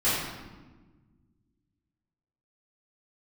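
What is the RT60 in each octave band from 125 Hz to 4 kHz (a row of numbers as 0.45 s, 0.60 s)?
2.4 s, 2.2 s, 1.5 s, 1.2 s, 1.0 s, 0.85 s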